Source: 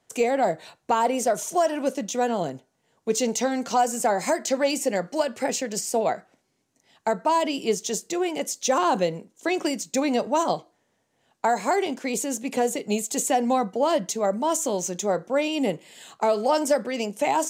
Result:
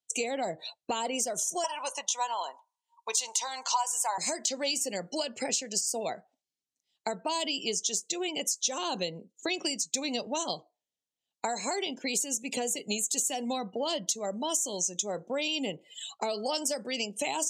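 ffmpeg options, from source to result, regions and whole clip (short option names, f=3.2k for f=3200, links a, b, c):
-filter_complex "[0:a]asettb=1/sr,asplit=3[a][b][c];[a]atrim=end=1.644[d];[b]atrim=start=1.64:end=4.18,asetpts=PTS-STARTPTS,afade=t=in:d=0.004:c=qsin,afade=t=out:st=2.536:d=0.004:c=qsin,highpass=f=970:t=q:w=11,equalizer=f=10k:t=o:w=0.54:g=5[e];[c]atrim=start=4.176[f];[d][e]acrossfade=d=0.004:c1=hsin:c2=qsin[g];[g][f]acrossfade=d=0.004:c1=qsin:c2=hsin,afftdn=nr=30:nf=-42,highshelf=f=2.3k:t=q:w=1.5:g=12.5,acompressor=threshold=-32dB:ratio=3"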